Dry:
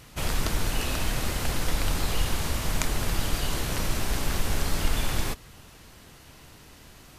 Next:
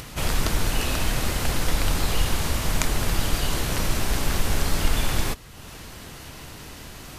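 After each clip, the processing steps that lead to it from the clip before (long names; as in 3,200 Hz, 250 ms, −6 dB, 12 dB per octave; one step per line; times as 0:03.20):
upward compression, threshold −35 dBFS
level +3.5 dB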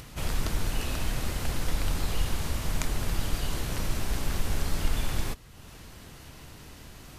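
low-shelf EQ 250 Hz +4 dB
level −8.5 dB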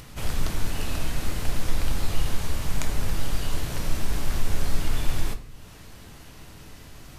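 rectangular room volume 63 cubic metres, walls mixed, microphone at 0.32 metres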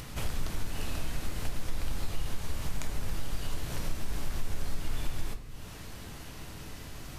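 downward compressor 2 to 1, threshold −34 dBFS, peak gain reduction 12 dB
level +1.5 dB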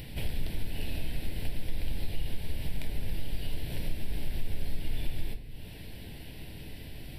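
phaser with its sweep stopped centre 2,900 Hz, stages 4
level +1 dB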